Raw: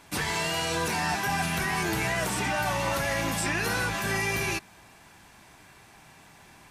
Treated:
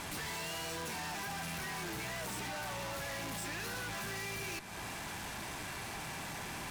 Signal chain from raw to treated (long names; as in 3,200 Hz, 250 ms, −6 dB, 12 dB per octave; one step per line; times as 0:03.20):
downward compressor 6 to 1, threshold −41 dBFS, peak gain reduction 15.5 dB
tube saturation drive 56 dB, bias 0.55
level +16.5 dB